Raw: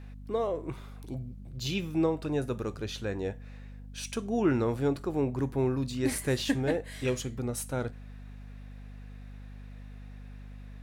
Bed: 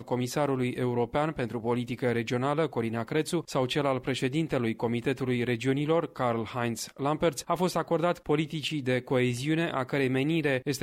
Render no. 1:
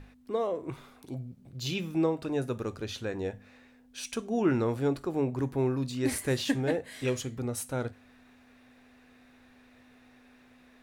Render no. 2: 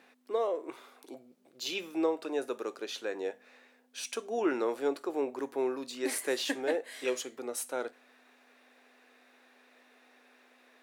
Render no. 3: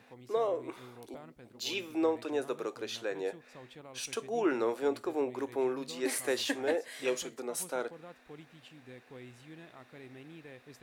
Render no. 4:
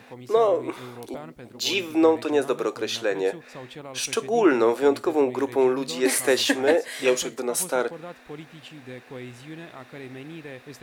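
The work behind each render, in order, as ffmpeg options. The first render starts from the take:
-af "bandreject=f=50:t=h:w=6,bandreject=f=100:t=h:w=6,bandreject=f=150:t=h:w=6,bandreject=f=200:t=h:w=6"
-af "highpass=f=340:w=0.5412,highpass=f=340:w=1.3066"
-filter_complex "[1:a]volume=-23.5dB[a];[0:a][a]amix=inputs=2:normalize=0"
-af "volume=11dB"

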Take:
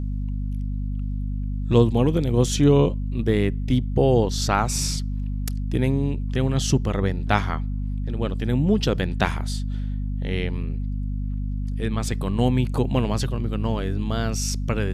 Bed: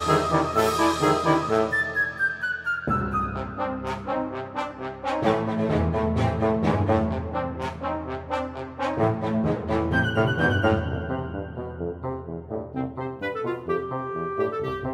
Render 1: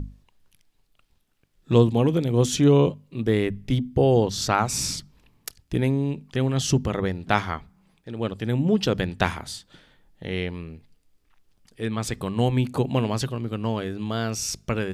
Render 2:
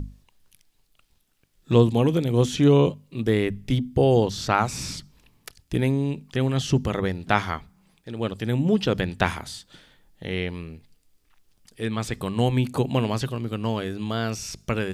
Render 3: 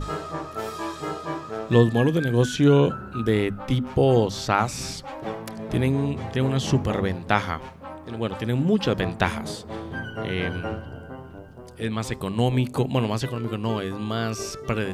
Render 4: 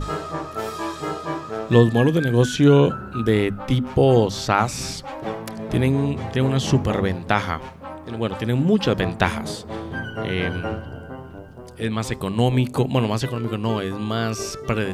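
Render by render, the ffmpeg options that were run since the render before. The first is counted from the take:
-af "bandreject=f=50:t=h:w=6,bandreject=f=100:t=h:w=6,bandreject=f=150:t=h:w=6,bandreject=f=200:t=h:w=6,bandreject=f=250:t=h:w=6"
-filter_complex "[0:a]acrossover=split=3300[a][b];[b]acompressor=threshold=-42dB:ratio=4:attack=1:release=60[c];[a][c]amix=inputs=2:normalize=0,highshelf=f=3.5k:g=7"
-filter_complex "[1:a]volume=-10dB[a];[0:a][a]amix=inputs=2:normalize=0"
-af "volume=3dB,alimiter=limit=-3dB:level=0:latency=1"

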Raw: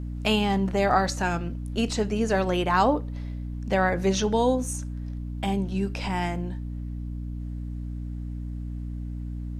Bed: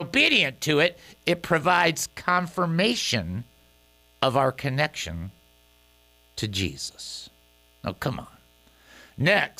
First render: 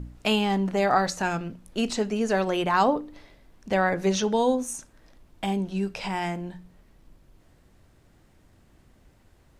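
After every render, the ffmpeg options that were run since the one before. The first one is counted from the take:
-af "bandreject=f=60:t=h:w=4,bandreject=f=120:t=h:w=4,bandreject=f=180:t=h:w=4,bandreject=f=240:t=h:w=4,bandreject=f=300:t=h:w=4"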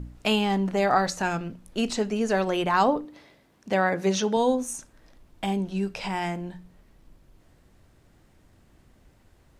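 -filter_complex "[0:a]asettb=1/sr,asplit=3[a][b][c];[a]atrim=end=3.054[d];[b]atrim=start=3.05:end=4.37,asetpts=PTS-STARTPTS,afade=t=in:d=0.004:c=qsin,afade=t=out:st=1.316:d=0.004:c=qsin,highpass=120[e];[c]atrim=start=4.366[f];[d][e]acrossfade=d=0.004:c1=hsin:c2=qsin[g];[g][f]acrossfade=d=0.004:c1=qsin:c2=hsin"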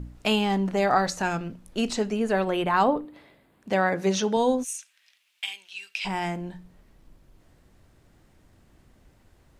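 -filter_complex "[0:a]asettb=1/sr,asplit=3[a][b][c];[a]atrim=end=2.164[d];[b]atrim=start=2.16:end=3.69,asetpts=PTS-STARTPTS,afade=t=in:d=0.004:c=qsin,afade=t=out:st=1.526:d=0.004:c=qsin,equalizer=f=5.8k:w=2.3:g=-13.5[e];[c]atrim=start=3.686[f];[d][e]acrossfade=d=0.004:c1=hsin:c2=qsin[g];[g][f]acrossfade=d=0.004:c1=qsin:c2=hsin,asplit=3[h][i][j];[h]afade=t=out:st=4.63:d=0.02[k];[i]highpass=f=2.6k:t=q:w=2.6,afade=t=in:st=4.63:d=0.02,afade=t=out:st=6.04:d=0.02[l];[j]afade=t=in:st=6.04:d=0.02[m];[k][l][m]amix=inputs=3:normalize=0"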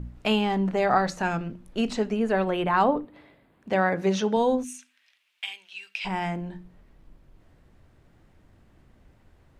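-af "bass=f=250:g=2,treble=f=4k:g=-8,bandreject=f=50:t=h:w=6,bandreject=f=100:t=h:w=6,bandreject=f=150:t=h:w=6,bandreject=f=200:t=h:w=6,bandreject=f=250:t=h:w=6,bandreject=f=300:t=h:w=6,bandreject=f=350:t=h:w=6"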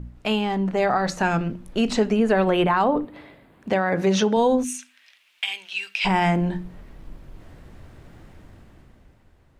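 -af "dynaudnorm=f=120:g=17:m=12.5dB,alimiter=limit=-11dB:level=0:latency=1:release=122"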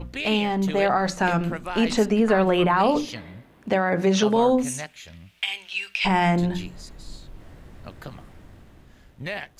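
-filter_complex "[1:a]volume=-11.5dB[a];[0:a][a]amix=inputs=2:normalize=0"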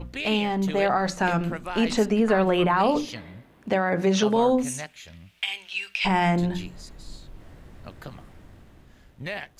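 -af "volume=-1.5dB"

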